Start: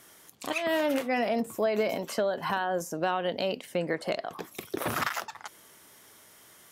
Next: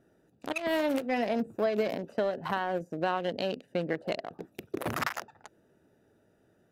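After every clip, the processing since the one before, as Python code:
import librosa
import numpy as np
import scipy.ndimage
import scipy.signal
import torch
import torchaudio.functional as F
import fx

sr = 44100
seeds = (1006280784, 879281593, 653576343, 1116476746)

y = fx.wiener(x, sr, points=41)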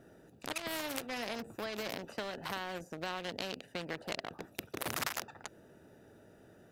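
y = fx.spectral_comp(x, sr, ratio=2.0)
y = y * librosa.db_to_amplitude(3.0)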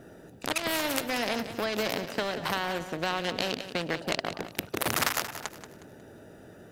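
y = fx.echo_feedback(x, sr, ms=181, feedback_pct=35, wet_db=-11.5)
y = y * librosa.db_to_amplitude(9.0)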